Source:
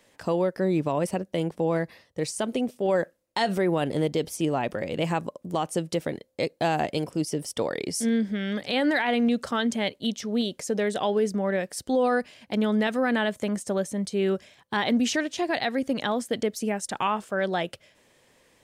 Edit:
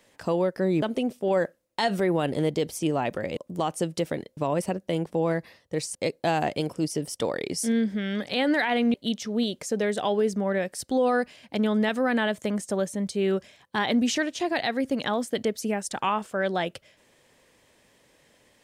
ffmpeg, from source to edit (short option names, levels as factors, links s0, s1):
-filter_complex "[0:a]asplit=6[s0][s1][s2][s3][s4][s5];[s0]atrim=end=0.822[s6];[s1]atrim=start=2.398:end=4.952[s7];[s2]atrim=start=5.318:end=6.322[s8];[s3]atrim=start=0.818:end=2.402[s9];[s4]atrim=start=6.318:end=9.312[s10];[s5]atrim=start=9.918[s11];[s6][s7]acrossfade=d=0.004:c1=hsin:c2=hsin[s12];[s12][s8]acrossfade=d=0.004:c1=hsin:c2=hsin[s13];[s13][s9]acrossfade=d=0.004:c1=hsin:c2=hsin[s14];[s14][s10]acrossfade=d=0.004:c1=hsin:c2=hsin[s15];[s15][s11]acrossfade=d=0.004:c1=hsin:c2=hsin"